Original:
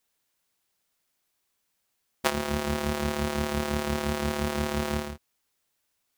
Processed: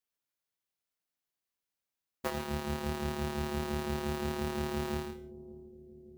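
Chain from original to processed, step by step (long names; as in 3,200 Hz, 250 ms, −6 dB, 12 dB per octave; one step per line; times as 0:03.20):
parametric band 10,000 Hz −2.5 dB 0.66 octaves
formants moved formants −3 semitones
reverb whose tail is shaped and stops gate 180 ms flat, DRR 9.5 dB
soft clipping −15.5 dBFS, distortion −17 dB
on a send: bucket-brigade delay 574 ms, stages 2,048, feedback 71%, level −11 dB
on the sum: expander for the loud parts 1.5 to 1, over −46 dBFS
level −4.5 dB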